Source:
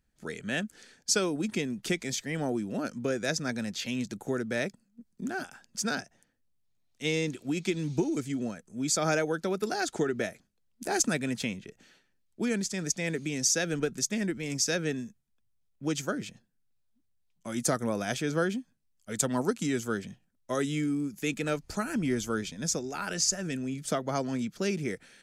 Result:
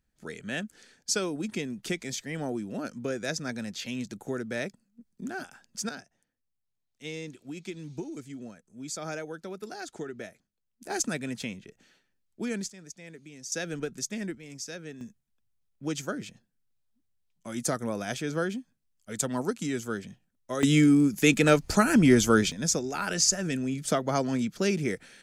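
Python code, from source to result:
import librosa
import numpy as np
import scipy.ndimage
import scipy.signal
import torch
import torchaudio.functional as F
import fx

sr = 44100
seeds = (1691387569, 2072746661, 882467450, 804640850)

y = fx.gain(x, sr, db=fx.steps((0.0, -2.0), (5.89, -9.0), (10.9, -3.0), (12.7, -15.0), (13.52, -4.0), (14.35, -11.0), (15.01, -1.5), (20.63, 10.0), (22.52, 3.5)))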